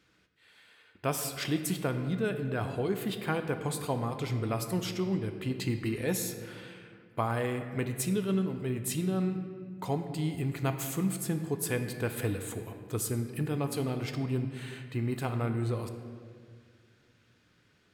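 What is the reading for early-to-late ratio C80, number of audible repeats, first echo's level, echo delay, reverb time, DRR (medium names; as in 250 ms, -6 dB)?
9.0 dB, no echo, no echo, no echo, 2.1 s, 6.5 dB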